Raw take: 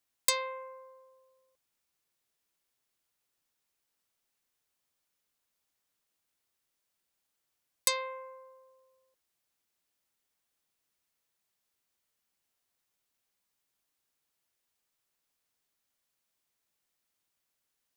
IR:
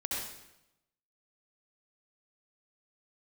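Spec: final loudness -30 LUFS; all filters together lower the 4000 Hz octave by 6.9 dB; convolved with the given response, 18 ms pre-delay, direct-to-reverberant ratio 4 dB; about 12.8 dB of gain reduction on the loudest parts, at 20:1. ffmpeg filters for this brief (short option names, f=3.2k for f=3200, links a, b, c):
-filter_complex "[0:a]equalizer=f=4k:t=o:g=-8,acompressor=threshold=-36dB:ratio=20,asplit=2[a][b];[1:a]atrim=start_sample=2205,adelay=18[c];[b][c]afir=irnorm=-1:irlink=0,volume=-8dB[d];[a][d]amix=inputs=2:normalize=0,volume=15dB"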